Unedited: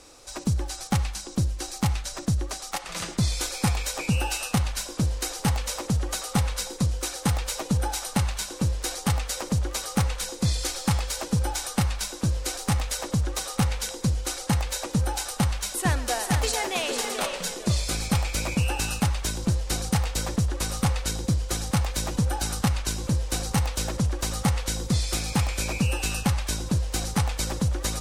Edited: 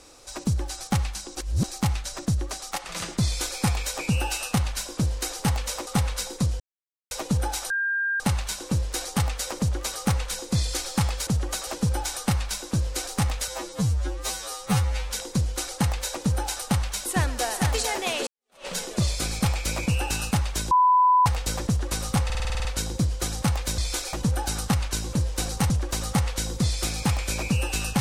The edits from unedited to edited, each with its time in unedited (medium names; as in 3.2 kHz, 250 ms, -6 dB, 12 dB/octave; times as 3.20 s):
1.37–1.64 s: reverse
3.25–3.60 s: copy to 22.07 s
5.87–6.27 s: move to 11.17 s
7.00–7.51 s: mute
8.10 s: add tone 1.6 kHz -22.5 dBFS 0.50 s
12.98–13.79 s: stretch 2×
16.96–17.36 s: fade in exponential
19.40–19.95 s: bleep 999 Hz -14.5 dBFS
20.94 s: stutter 0.05 s, 9 plays
23.64–24.00 s: delete